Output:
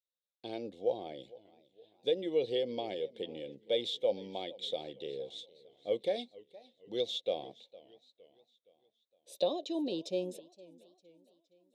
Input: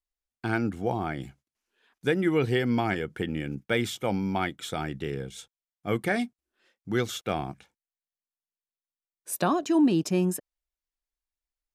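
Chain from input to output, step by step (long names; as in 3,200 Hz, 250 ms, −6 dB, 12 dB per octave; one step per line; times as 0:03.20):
pair of resonant band-passes 1,400 Hz, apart 2.8 octaves
feedback echo with a swinging delay time 463 ms, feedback 46%, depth 156 cents, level −21 dB
level +4.5 dB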